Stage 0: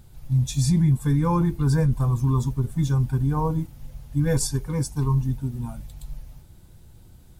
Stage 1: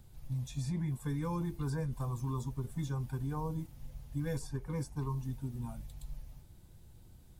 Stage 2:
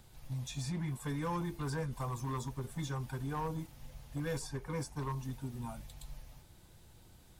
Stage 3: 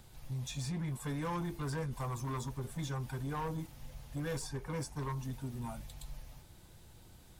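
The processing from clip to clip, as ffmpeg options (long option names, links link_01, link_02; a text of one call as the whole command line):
ffmpeg -i in.wav -filter_complex "[0:a]equalizer=frequency=1400:width=7.2:gain=-3,acrossover=split=370|1100|2500[link_01][link_02][link_03][link_04];[link_01]acompressor=threshold=-28dB:ratio=4[link_05];[link_02]acompressor=threshold=-34dB:ratio=4[link_06];[link_03]acompressor=threshold=-46dB:ratio=4[link_07];[link_04]acompressor=threshold=-45dB:ratio=4[link_08];[link_05][link_06][link_07][link_08]amix=inputs=4:normalize=0,volume=-7.5dB" out.wav
ffmpeg -i in.wav -filter_complex "[0:a]volume=30dB,asoftclip=hard,volume=-30dB,asplit=2[link_01][link_02];[link_02]highpass=frequency=720:poles=1,volume=10dB,asoftclip=type=tanh:threshold=-30dB[link_03];[link_01][link_03]amix=inputs=2:normalize=0,lowpass=frequency=6700:poles=1,volume=-6dB,volume=1.5dB" out.wav
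ffmpeg -i in.wav -af "asoftclip=type=tanh:threshold=-33.5dB,volume=2dB" out.wav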